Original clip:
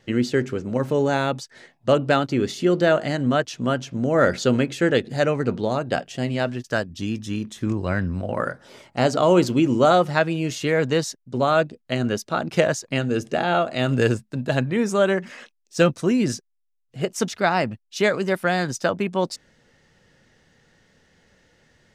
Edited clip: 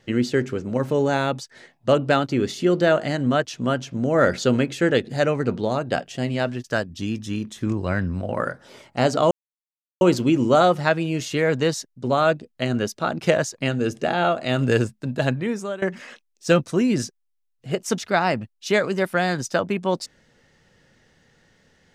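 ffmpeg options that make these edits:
-filter_complex "[0:a]asplit=3[a][b][c];[a]atrim=end=9.31,asetpts=PTS-STARTPTS,afade=t=out:st=9.306:d=0.004:c=hsin,apad=pad_dur=0.7[d];[b]atrim=start=9.31:end=15.12,asetpts=PTS-STARTPTS,afade=t=in:d=0.004:c=hsin,afade=t=out:st=5.28:d=0.53:silence=0.112202[e];[c]atrim=start=15.12,asetpts=PTS-STARTPTS,afade=t=in:d=0.004:c=hsin:silence=0.112202[f];[d][e][f]concat=n=3:v=0:a=1"

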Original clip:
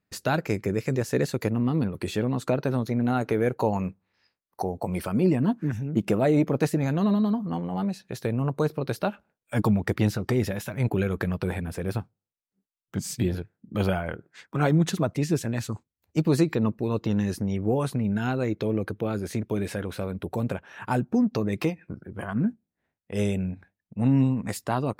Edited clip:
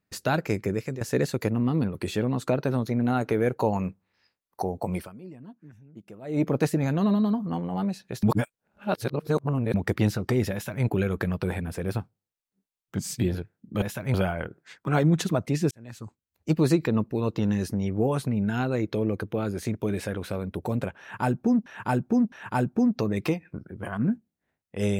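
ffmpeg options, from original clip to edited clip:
-filter_complex "[0:a]asplit=11[a][b][c][d][e][f][g][h][i][j][k];[a]atrim=end=1.01,asetpts=PTS-STARTPTS,afade=t=out:st=0.58:d=0.43:c=qsin:silence=0.237137[l];[b]atrim=start=1.01:end=5.18,asetpts=PTS-STARTPTS,afade=t=in:d=0.004:c=hsin:silence=0.237137,afade=t=out:st=3.94:d=0.23:c=qua:silence=0.0841395[m];[c]atrim=start=5.18:end=6.2,asetpts=PTS-STARTPTS,volume=-21.5dB[n];[d]atrim=start=6.2:end=8.232,asetpts=PTS-STARTPTS,afade=t=in:d=0.23:c=qua:silence=0.0841395[o];[e]atrim=start=8.228:end=9.742,asetpts=PTS-STARTPTS,areverse[p];[f]atrim=start=9.738:end=13.822[q];[g]atrim=start=10.528:end=10.852[r];[h]atrim=start=13.818:end=15.39,asetpts=PTS-STARTPTS,afade=t=out:st=1.568:d=0.004:c=hsin[s];[i]atrim=start=15.39:end=21.342,asetpts=PTS-STARTPTS,afade=t=in:d=0.81[t];[j]atrim=start=20.678:end=21.342[u];[k]atrim=start=20.678[v];[l][m][n][o]concat=n=4:v=0:a=1[w];[w][p]acrossfade=d=0.004:c1=hsin:c2=hsin[x];[x][q]acrossfade=d=0.004:c1=hsin:c2=hsin[y];[y][r]acrossfade=d=0.004:c1=hsin:c2=hsin[z];[s][t]concat=n=2:v=0:a=1[aa];[z][aa]acrossfade=d=0.004:c1=hsin:c2=hsin[ab];[ab][u]acrossfade=d=0.004:c1=hsin:c2=hsin[ac];[ac][v]acrossfade=d=0.004:c1=hsin:c2=hsin"

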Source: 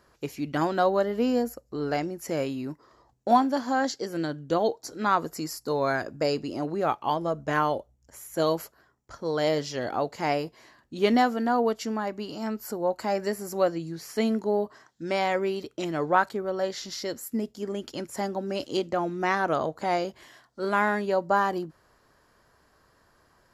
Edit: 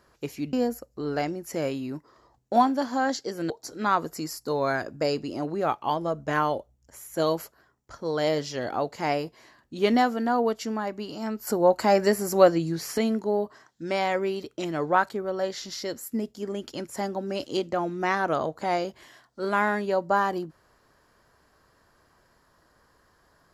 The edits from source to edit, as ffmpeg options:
-filter_complex "[0:a]asplit=5[a][b][c][d][e];[a]atrim=end=0.532[f];[b]atrim=start=1.278:end=4.252[g];[c]atrim=start=4.698:end=12.672[h];[d]atrim=start=12.668:end=14.182,asetpts=PTS-STARTPTS,volume=7dB[i];[e]atrim=start=14.178[j];[f][g]acrossfade=d=0.004:c1=hsin:c2=hsin[k];[k][h]acrossfade=d=0.004:c1=hsin:c2=hsin[l];[l][i]acrossfade=d=0.004:c1=hsin:c2=hsin[m];[m][j]acrossfade=d=0.004:c1=hsin:c2=hsin"

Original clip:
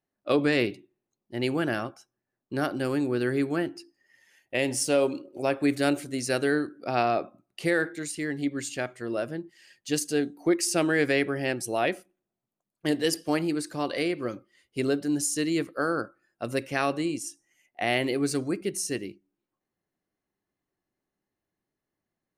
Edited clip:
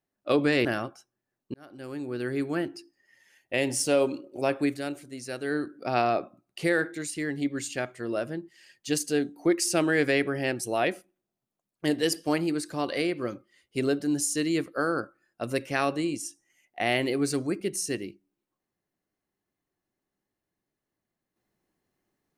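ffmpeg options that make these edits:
-filter_complex "[0:a]asplit=5[a][b][c][d][e];[a]atrim=end=0.652[f];[b]atrim=start=1.658:end=2.55,asetpts=PTS-STARTPTS,afade=t=out:st=0.888:d=0.004:c=hsin[g];[c]atrim=start=2.55:end=5.83,asetpts=PTS-STARTPTS,afade=t=in:d=1.2,afade=t=out:st=3.04:d=0.24:silence=0.354813[h];[d]atrim=start=5.83:end=6.43,asetpts=PTS-STARTPTS,volume=-9dB[i];[e]atrim=start=6.43,asetpts=PTS-STARTPTS,afade=t=in:d=0.24:silence=0.354813[j];[g][h][i][j]concat=n=4:v=0:a=1[k];[f][k]acrossfade=d=0.004:c1=hsin:c2=hsin"

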